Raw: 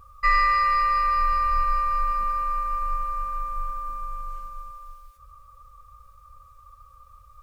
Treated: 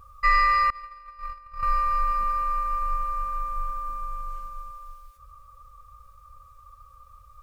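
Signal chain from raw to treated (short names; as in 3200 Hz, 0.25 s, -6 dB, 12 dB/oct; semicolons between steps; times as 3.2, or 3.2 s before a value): 0.7–1.63 gate -18 dBFS, range -26 dB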